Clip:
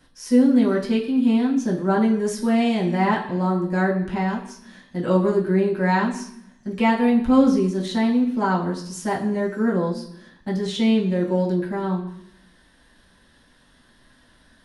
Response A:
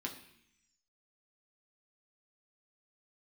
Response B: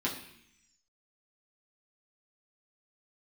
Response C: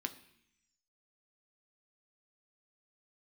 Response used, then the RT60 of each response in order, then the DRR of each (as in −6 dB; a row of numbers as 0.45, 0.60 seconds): B; 0.70, 0.70, 0.70 seconds; −0.5, −5.5, 6.5 decibels